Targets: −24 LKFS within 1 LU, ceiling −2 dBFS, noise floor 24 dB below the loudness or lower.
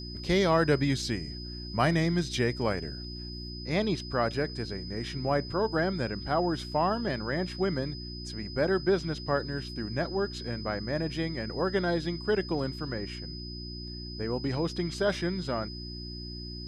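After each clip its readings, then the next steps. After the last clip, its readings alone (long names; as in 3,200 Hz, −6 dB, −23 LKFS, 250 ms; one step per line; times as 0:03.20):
mains hum 60 Hz; hum harmonics up to 360 Hz; level of the hum −38 dBFS; interfering tone 5,000 Hz; level of the tone −42 dBFS; integrated loudness −30.5 LKFS; sample peak −12.5 dBFS; target loudness −24.0 LKFS
→ hum removal 60 Hz, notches 6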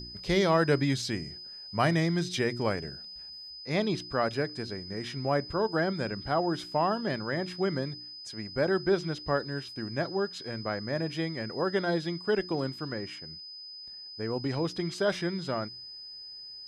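mains hum none found; interfering tone 5,000 Hz; level of the tone −42 dBFS
→ notch filter 5,000 Hz, Q 30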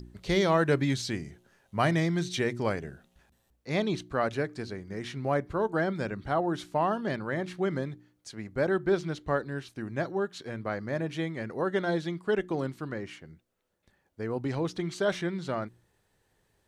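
interfering tone none found; integrated loudness −30.5 LKFS; sample peak −13.5 dBFS; target loudness −24.0 LKFS
→ level +6.5 dB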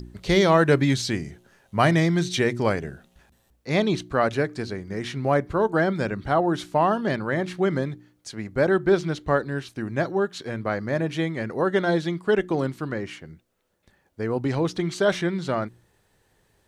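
integrated loudness −24.0 LKFS; sample peak −7.0 dBFS; background noise floor −66 dBFS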